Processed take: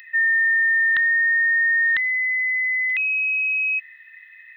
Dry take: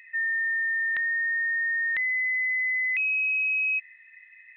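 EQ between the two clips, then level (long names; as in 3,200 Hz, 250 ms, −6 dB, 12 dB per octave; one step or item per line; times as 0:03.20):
high-shelf EQ 2,400 Hz +11 dB
phaser with its sweep stopped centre 2,300 Hz, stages 6
+8.0 dB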